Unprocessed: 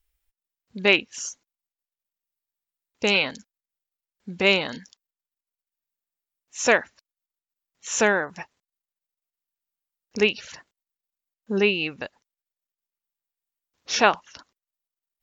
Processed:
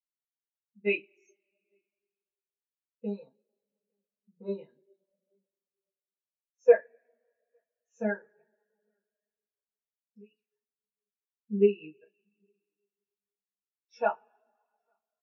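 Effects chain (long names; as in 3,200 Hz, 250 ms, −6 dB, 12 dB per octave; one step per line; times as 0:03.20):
0:03.06–0:04.58: flat-topped bell 2,500 Hz −14.5 dB 1 octave
0:08.17–0:10.31: downward compressor 4 to 1, threshold −31 dBFS, peak gain reduction 14 dB
high-frequency loss of the air 52 metres
single-tap delay 855 ms −22.5 dB
coupled-rooms reverb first 0.22 s, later 5 s, from −20 dB, DRR −3 dB
every bin expanded away from the loudest bin 2.5 to 1
level −7.5 dB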